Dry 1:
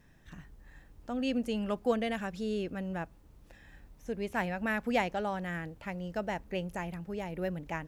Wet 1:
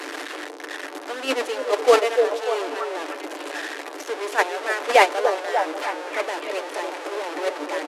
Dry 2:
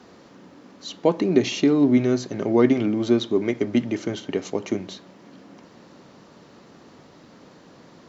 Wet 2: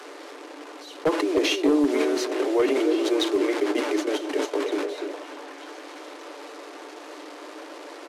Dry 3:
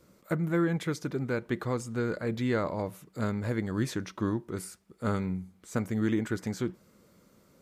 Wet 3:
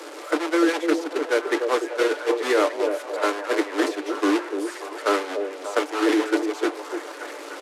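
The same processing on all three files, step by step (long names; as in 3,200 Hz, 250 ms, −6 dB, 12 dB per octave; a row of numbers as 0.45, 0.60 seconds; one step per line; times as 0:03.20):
linear delta modulator 64 kbit/s, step −27.5 dBFS
low-pass filter 3,100 Hz 6 dB per octave
noise gate −28 dBFS, range −14 dB
Butterworth high-pass 290 Hz 96 dB per octave
comb filter 6.8 ms, depth 30%
in parallel at 0 dB: compressor whose output falls as the input rises −31 dBFS, ratio −0.5
on the sum: wave folding −11.5 dBFS
on a send: echo through a band-pass that steps 294 ms, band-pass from 460 Hz, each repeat 0.7 octaves, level −3.5 dB
on the sum: loudness normalisation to −24 LKFS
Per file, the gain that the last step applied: +13.0, −2.5, +6.0 decibels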